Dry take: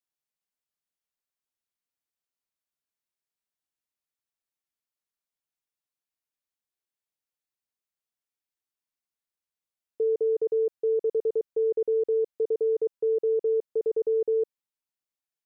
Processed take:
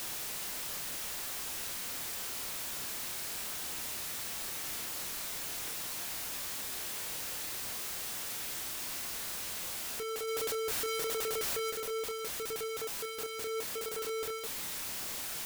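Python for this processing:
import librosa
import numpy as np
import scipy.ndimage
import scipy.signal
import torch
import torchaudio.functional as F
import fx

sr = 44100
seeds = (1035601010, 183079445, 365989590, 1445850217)

y = np.sign(x) * np.sqrt(np.mean(np.square(x)))
y = fx.chorus_voices(y, sr, voices=2, hz=0.53, base_ms=29, depth_ms=1.5, mix_pct=30)
y = fx.env_flatten(y, sr, amount_pct=100, at=(10.27, 11.7), fade=0.02)
y = y * librosa.db_to_amplitude(-2.5)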